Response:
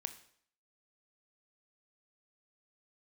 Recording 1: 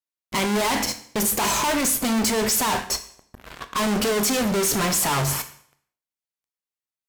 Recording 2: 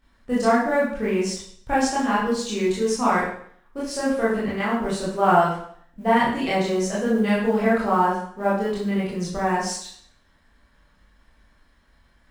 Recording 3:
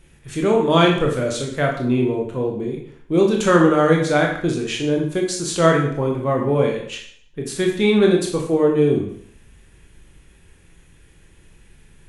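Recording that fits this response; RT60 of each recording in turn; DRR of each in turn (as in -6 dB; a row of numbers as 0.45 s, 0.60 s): 1; 0.60 s, 0.60 s, 0.60 s; 9.0 dB, -9.0 dB, -0.5 dB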